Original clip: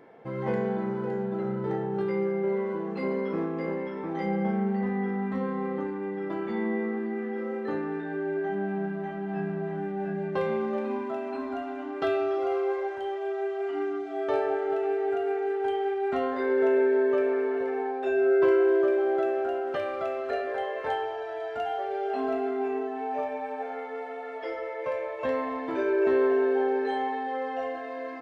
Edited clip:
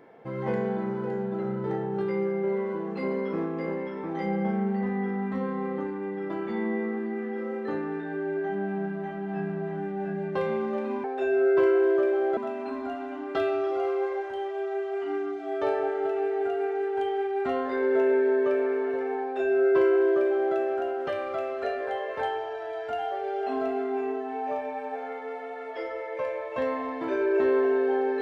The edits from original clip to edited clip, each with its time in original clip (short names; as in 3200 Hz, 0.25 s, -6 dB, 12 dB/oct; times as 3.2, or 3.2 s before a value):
17.89–19.22 copy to 11.04